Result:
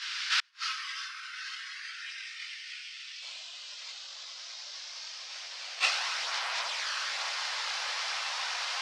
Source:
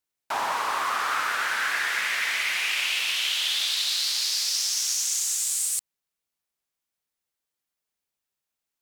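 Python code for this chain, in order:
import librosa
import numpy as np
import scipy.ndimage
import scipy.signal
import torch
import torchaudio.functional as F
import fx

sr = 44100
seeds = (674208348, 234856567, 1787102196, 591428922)

y = fx.bin_compress(x, sr, power=0.2)
y = fx.echo_feedback(y, sr, ms=88, feedback_pct=54, wet_db=-5.5)
y = fx.noise_reduce_blind(y, sr, reduce_db=16)
y = (np.kron(y[::4], np.eye(4)[0]) * 4)[:len(y)]
y = fx.over_compress(y, sr, threshold_db=-24.0, ratio=-0.5)
y = fx.chorus_voices(y, sr, voices=4, hz=0.57, base_ms=19, depth_ms=4.6, mix_pct=65)
y = fx.rev_gated(y, sr, seeds[0], gate_ms=430, shape='falling', drr_db=7.5)
y = fx.gate_flip(y, sr, shuts_db=-4.0, range_db=-41)
y = fx.ellip_bandpass(y, sr, low_hz=fx.steps((0.0, 1400.0), (3.21, 590.0)), high_hz=5200.0, order=3, stop_db=70)
y = fx.attack_slew(y, sr, db_per_s=350.0)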